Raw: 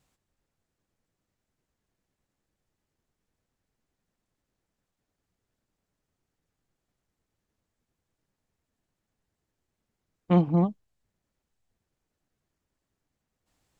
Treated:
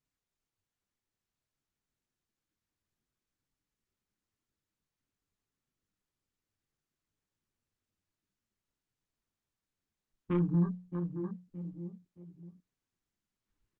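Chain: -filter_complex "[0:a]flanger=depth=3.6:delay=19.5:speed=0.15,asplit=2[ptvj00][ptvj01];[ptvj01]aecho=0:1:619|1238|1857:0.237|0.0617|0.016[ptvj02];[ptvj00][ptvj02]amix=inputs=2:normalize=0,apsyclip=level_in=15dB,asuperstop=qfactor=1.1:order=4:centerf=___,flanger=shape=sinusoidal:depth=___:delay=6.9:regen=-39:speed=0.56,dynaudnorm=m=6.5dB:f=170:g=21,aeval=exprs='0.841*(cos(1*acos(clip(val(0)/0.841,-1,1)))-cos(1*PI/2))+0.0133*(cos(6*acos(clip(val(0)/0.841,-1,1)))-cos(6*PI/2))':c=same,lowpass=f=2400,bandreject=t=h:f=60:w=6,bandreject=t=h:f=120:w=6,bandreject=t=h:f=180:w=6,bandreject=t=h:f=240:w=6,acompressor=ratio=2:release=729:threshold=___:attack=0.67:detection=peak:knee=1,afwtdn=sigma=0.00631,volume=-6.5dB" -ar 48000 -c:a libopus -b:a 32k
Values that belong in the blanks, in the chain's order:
650, 3.1, -25dB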